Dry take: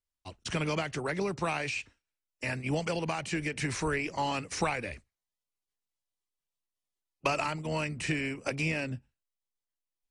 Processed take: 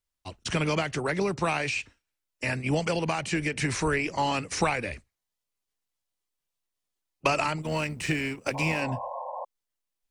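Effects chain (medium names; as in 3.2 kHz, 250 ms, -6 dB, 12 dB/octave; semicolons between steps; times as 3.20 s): 7.62–8.82 s: companding laws mixed up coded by A; 8.54–9.45 s: painted sound noise 490–1100 Hz -40 dBFS; trim +4.5 dB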